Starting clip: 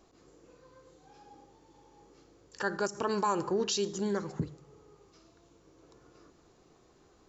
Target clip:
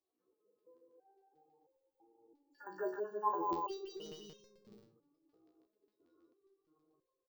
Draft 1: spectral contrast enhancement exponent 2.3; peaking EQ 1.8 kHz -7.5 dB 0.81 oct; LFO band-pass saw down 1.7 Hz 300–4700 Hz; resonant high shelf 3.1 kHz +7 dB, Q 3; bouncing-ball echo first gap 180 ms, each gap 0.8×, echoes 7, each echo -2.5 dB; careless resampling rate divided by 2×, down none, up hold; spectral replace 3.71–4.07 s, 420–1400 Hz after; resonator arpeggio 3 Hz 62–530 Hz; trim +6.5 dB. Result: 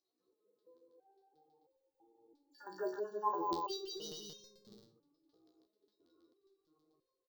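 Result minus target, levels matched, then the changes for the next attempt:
8 kHz band +9.5 dB
remove: resonant high shelf 3.1 kHz +7 dB, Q 3

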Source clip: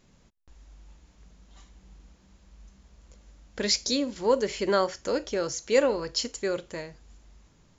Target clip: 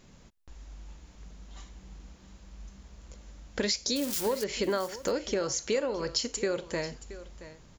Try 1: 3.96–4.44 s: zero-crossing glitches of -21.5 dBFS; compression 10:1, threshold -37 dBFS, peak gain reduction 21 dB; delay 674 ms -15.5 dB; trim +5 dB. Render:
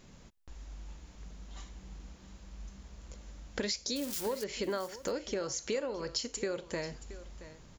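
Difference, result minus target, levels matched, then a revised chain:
compression: peak gain reduction +5.5 dB
3.96–4.44 s: zero-crossing glitches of -21.5 dBFS; compression 10:1, threshold -31 dBFS, peak gain reduction 15.5 dB; delay 674 ms -15.5 dB; trim +5 dB

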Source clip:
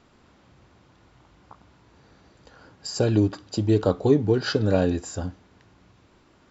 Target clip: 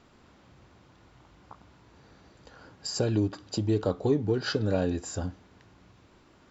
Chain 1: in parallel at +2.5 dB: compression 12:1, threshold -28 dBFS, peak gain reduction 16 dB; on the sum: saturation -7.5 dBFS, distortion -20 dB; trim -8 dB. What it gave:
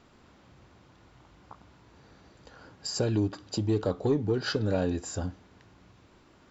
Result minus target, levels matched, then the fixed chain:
saturation: distortion +10 dB
in parallel at +2.5 dB: compression 12:1, threshold -28 dBFS, peak gain reduction 16 dB; on the sum: saturation -1.5 dBFS, distortion -30 dB; trim -8 dB

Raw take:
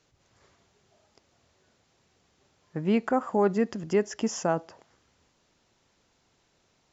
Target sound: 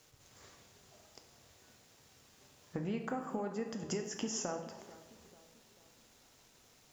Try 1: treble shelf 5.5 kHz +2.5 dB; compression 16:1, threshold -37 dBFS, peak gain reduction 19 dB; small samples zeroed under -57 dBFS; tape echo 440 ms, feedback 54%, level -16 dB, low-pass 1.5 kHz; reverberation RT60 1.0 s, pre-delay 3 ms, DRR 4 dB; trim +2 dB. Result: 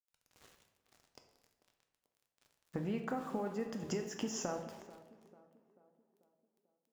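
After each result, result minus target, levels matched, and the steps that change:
small samples zeroed: distortion +7 dB; 8 kHz band -3.5 dB
change: small samples zeroed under -66 dBFS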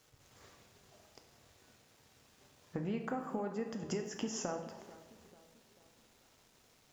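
8 kHz band -3.0 dB
change: treble shelf 5.5 kHz +10.5 dB

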